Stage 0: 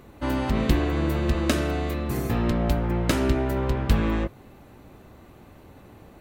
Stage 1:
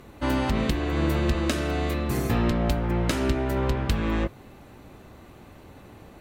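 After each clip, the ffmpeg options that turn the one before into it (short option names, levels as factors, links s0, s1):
-af "crystalizer=i=4.5:c=0,aemphasis=mode=reproduction:type=75fm,alimiter=limit=0.224:level=0:latency=1:release=341"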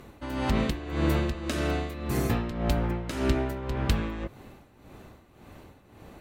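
-af "tremolo=f=1.8:d=0.72"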